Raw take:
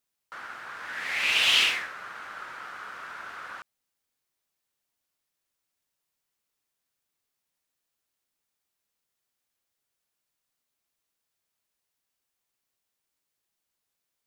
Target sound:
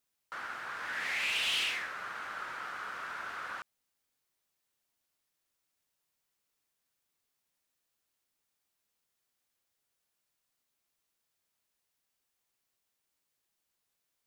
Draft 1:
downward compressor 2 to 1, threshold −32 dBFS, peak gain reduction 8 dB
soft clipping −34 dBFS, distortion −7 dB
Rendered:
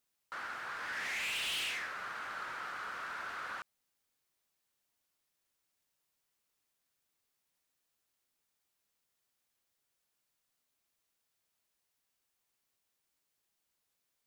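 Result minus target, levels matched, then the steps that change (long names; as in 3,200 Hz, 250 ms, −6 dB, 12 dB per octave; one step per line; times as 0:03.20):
soft clipping: distortion +8 dB
change: soft clipping −25.5 dBFS, distortion −15 dB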